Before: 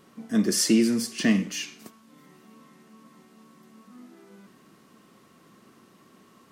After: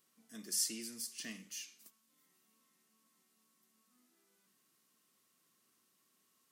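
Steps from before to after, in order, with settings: pre-emphasis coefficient 0.9; notches 50/100/150/200 Hz; gain -8.5 dB

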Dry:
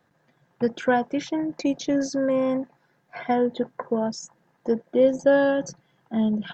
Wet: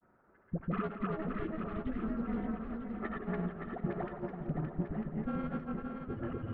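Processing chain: mistuned SSB -310 Hz 400–2300 Hz; in parallel at +2 dB: limiter -20 dBFS, peak gain reduction 9.5 dB; on the sum: added harmonics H 4 -15 dB, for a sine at -7 dBFS; compressor 6:1, threshold -28 dBFS, peak gain reduction 16 dB; dispersion highs, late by 85 ms, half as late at 520 Hz; grains, spray 0.213 s, pitch spread up and down by 0 st; swung echo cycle 0.948 s, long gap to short 1.5:1, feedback 43%, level -6 dB; warbling echo 0.17 s, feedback 54%, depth 113 cents, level -11.5 dB; gain -5 dB

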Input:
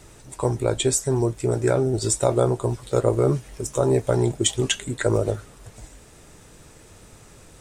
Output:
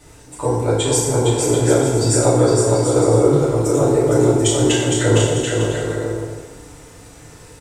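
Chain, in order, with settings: bouncing-ball echo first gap 0.46 s, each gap 0.6×, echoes 5; FDN reverb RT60 1.2 s, low-frequency decay 0.75×, high-frequency decay 0.75×, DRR -7 dB; gain -3 dB

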